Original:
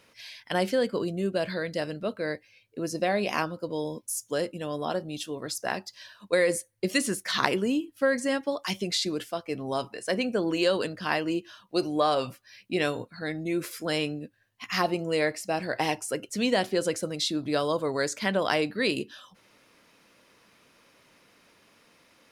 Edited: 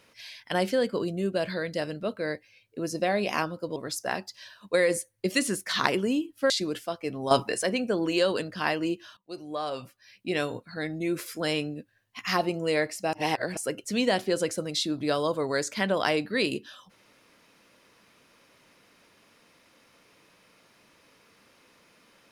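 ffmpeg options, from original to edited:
ffmpeg -i in.wav -filter_complex "[0:a]asplit=8[link_01][link_02][link_03][link_04][link_05][link_06][link_07][link_08];[link_01]atrim=end=3.762[link_09];[link_02]atrim=start=5.348:end=8.092[link_10];[link_03]atrim=start=8.948:end=9.762[link_11];[link_04]atrim=start=9.758:end=10.082,asetpts=PTS-STARTPTS,volume=9.5dB[link_12];[link_05]atrim=start=10.078:end=11.62,asetpts=PTS-STARTPTS,afade=type=out:start_time=1.538:duration=0.004:curve=hsin:silence=0.125893[link_13];[link_06]atrim=start=11.62:end=15.582,asetpts=PTS-STARTPTS,afade=type=in:duration=1.49:silence=0.125893[link_14];[link_07]atrim=start=15.578:end=16.022,asetpts=PTS-STARTPTS,areverse[link_15];[link_08]atrim=start=16.018[link_16];[link_09][link_10]acrossfade=duration=0.004:curve1=hsin:curve2=hsin[link_17];[link_17][link_11]acrossfade=duration=0.004:curve1=hsin:curve2=hsin[link_18];[link_18][link_12]acrossfade=duration=0.004:curve1=hsin:curve2=hsin[link_19];[link_13][link_14]concat=n=2:v=0:a=1[link_20];[link_19][link_20]acrossfade=duration=0.004:curve1=hsin:curve2=hsin[link_21];[link_21][link_15]acrossfade=duration=0.004:curve1=hsin:curve2=hsin[link_22];[link_22][link_16]acrossfade=duration=0.004:curve1=hsin:curve2=hsin" out.wav

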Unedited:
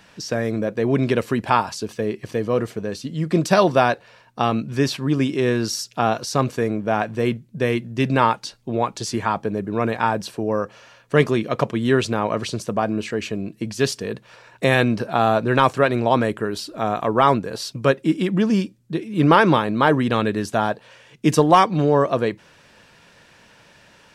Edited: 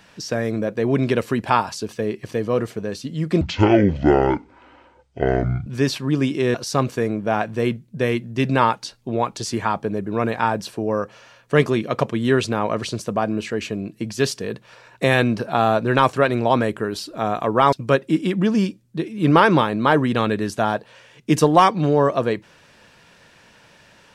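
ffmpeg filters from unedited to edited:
ffmpeg -i in.wav -filter_complex "[0:a]asplit=5[link_01][link_02][link_03][link_04][link_05];[link_01]atrim=end=3.414[link_06];[link_02]atrim=start=3.41:end=4.65,asetpts=PTS-STARTPTS,asetrate=24255,aresample=44100,atrim=end_sample=99425,asetpts=PTS-STARTPTS[link_07];[link_03]atrim=start=4.646:end=5.532[link_08];[link_04]atrim=start=6.148:end=17.332[link_09];[link_05]atrim=start=17.678[link_10];[link_06][link_07]acrossfade=duration=0.004:curve1=hsin:curve2=hsin[link_11];[link_11][link_08]acrossfade=duration=0.004:curve1=hsin:curve2=hsin[link_12];[link_12][link_09]acrossfade=duration=0.004:curve1=hsin:curve2=hsin[link_13];[link_13][link_10]acrossfade=duration=0.004:curve1=hsin:curve2=hsin" out.wav

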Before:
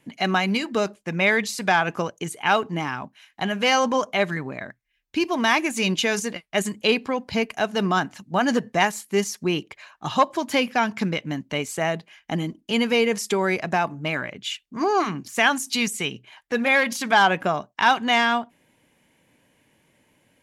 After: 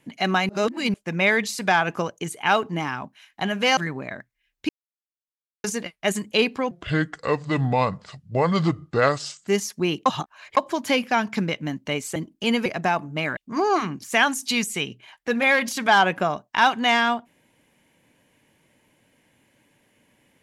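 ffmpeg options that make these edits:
ffmpeg -i in.wav -filter_complex "[0:a]asplit=13[link_01][link_02][link_03][link_04][link_05][link_06][link_07][link_08][link_09][link_10][link_11][link_12][link_13];[link_01]atrim=end=0.492[link_14];[link_02]atrim=start=0.488:end=0.942,asetpts=PTS-STARTPTS,areverse[link_15];[link_03]atrim=start=0.938:end=3.772[link_16];[link_04]atrim=start=4.268:end=5.19,asetpts=PTS-STARTPTS,afade=type=out:start_time=0.918:duration=0.004:curve=hsin[link_17];[link_05]atrim=start=5.19:end=6.14,asetpts=PTS-STARTPTS,volume=0[link_18];[link_06]atrim=start=6.14:end=7.214,asetpts=PTS-STARTPTS,afade=type=in:duration=0.004:curve=hsin[link_19];[link_07]atrim=start=7.21:end=9.12,asetpts=PTS-STARTPTS,asetrate=30429,aresample=44100[link_20];[link_08]atrim=start=9.116:end=9.702[link_21];[link_09]atrim=start=9.698:end=10.212,asetpts=PTS-STARTPTS,areverse[link_22];[link_10]atrim=start=10.208:end=11.802[link_23];[link_11]atrim=start=12.428:end=12.932[link_24];[link_12]atrim=start=13.538:end=14.252[link_25];[link_13]atrim=start=14.608[link_26];[link_14][link_15]acrossfade=duration=0.004:curve1=hsin:curve2=hsin[link_27];[link_27][link_16]acrossfade=duration=0.004:curve1=hsin:curve2=hsin[link_28];[link_17][link_18][link_19]concat=n=3:v=0:a=1[link_29];[link_28][link_29]acrossfade=duration=0.004:curve1=hsin:curve2=hsin[link_30];[link_30][link_20]acrossfade=duration=0.004:curve1=hsin:curve2=hsin[link_31];[link_31][link_21]acrossfade=duration=0.004:curve1=hsin:curve2=hsin[link_32];[link_32][link_22]acrossfade=duration=0.004:curve1=hsin:curve2=hsin[link_33];[link_33][link_23]acrossfade=duration=0.004:curve1=hsin:curve2=hsin[link_34];[link_34][link_24]acrossfade=duration=0.004:curve1=hsin:curve2=hsin[link_35];[link_35][link_25]acrossfade=duration=0.004:curve1=hsin:curve2=hsin[link_36];[link_36][link_26]acrossfade=duration=0.004:curve1=hsin:curve2=hsin" out.wav

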